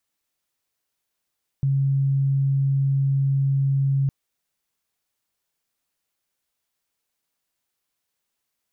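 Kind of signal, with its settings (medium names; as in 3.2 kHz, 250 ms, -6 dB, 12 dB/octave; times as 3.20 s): tone sine 137 Hz -17.5 dBFS 2.46 s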